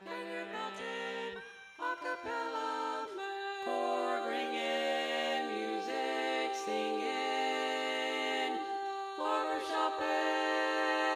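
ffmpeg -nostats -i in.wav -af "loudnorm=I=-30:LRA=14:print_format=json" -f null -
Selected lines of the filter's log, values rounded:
"input_i" : "-34.6",
"input_tp" : "-20.5",
"input_lra" : "4.4",
"input_thresh" : "-44.7",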